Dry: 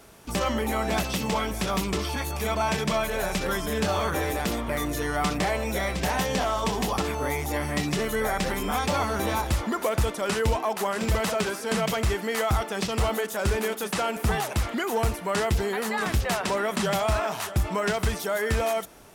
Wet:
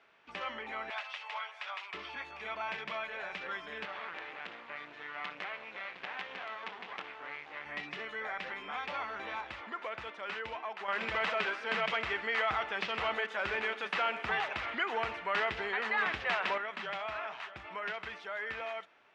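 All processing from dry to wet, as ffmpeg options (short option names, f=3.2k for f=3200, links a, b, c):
-filter_complex "[0:a]asettb=1/sr,asplit=3[a][b][c];[a]atrim=end=0.904[d];[b]atrim=start=0.9:end=1.94,asetpts=PTS-STARTPTS,afade=t=in:d=0.004:c=qsin,afade=t=out:st=1.036:d=0.004:c=qsin,highpass=f=680:w=0.5412,highpass=f=680:w=1.3066,aecho=1:1:4.8:0.32,atrim=end_sample=45864[e];[c]atrim=start=1.936[f];[d][e]acrossfade=d=0.004:c1=hsin:c2=qsin[g];[g][f]acrossfade=d=0.004:c1=qsin:c2=hsin,asettb=1/sr,asplit=3[h][i][j];[h]atrim=end=3.854[k];[i]atrim=start=3.85:end=7.66,asetpts=PTS-STARTPTS,afade=t=in:d=0.004:c=qsin,afade=t=out:st=3.806:d=0.004:c=qsin,highpass=120,lowpass=4.6k,acrusher=bits=4:dc=4:mix=0:aa=0.000001[l];[j]atrim=start=7.656[m];[k][l]acrossfade=d=0.004:c1=hsin:c2=qsin[n];[n][m]acrossfade=d=0.004:c1=qsin:c2=hsin,asettb=1/sr,asplit=3[o][p][q];[o]atrim=end=10.884[r];[p]atrim=start=10.88:end=16.58,asetpts=PTS-STARTPTS,afade=t=in:d=0.004:c=qsin,afade=t=out:st=5.696:d=0.004:c=qsin,acontrast=83,aecho=1:1:127:0.141,atrim=end_sample=251370[s];[q]atrim=start=16.576[t];[r][s]acrossfade=d=0.004:c1=hsin:c2=qsin[u];[u][t]acrossfade=d=0.004:c1=qsin:c2=hsin,lowpass=f=2.5k:w=0.5412,lowpass=f=2.5k:w=1.3066,aderivative,volume=5.5dB"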